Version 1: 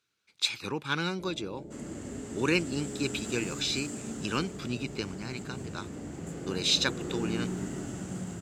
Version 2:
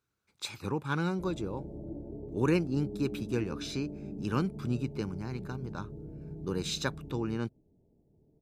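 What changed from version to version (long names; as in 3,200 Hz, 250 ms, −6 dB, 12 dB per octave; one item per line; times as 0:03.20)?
second sound: muted
master: remove meter weighting curve D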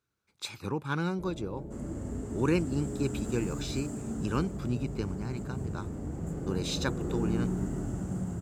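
first sound: remove Chebyshev low-pass filter 840 Hz, order 4
second sound: unmuted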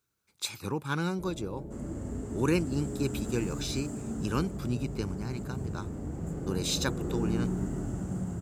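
speech: add high-shelf EQ 6,200 Hz +12 dB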